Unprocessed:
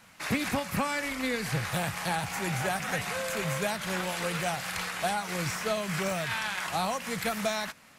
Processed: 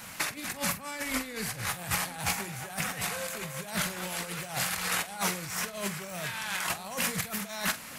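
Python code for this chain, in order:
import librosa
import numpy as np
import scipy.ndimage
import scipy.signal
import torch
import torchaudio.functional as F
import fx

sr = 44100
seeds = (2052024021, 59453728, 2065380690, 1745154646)

p1 = fx.high_shelf(x, sr, hz=7600.0, db=11.0)
p2 = fx.over_compress(p1, sr, threshold_db=-36.0, ratio=-0.5)
p3 = fx.doubler(p2, sr, ms=45.0, db=-13)
p4 = p3 + fx.echo_single(p3, sr, ms=951, db=-19.0, dry=0)
y = F.gain(torch.from_numpy(p4), 3.0).numpy()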